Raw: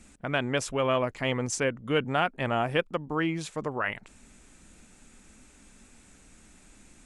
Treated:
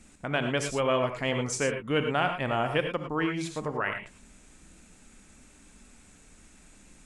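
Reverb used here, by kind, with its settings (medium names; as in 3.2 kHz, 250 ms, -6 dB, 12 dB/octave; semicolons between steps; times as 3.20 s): gated-style reverb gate 130 ms rising, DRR 5.5 dB; trim -1 dB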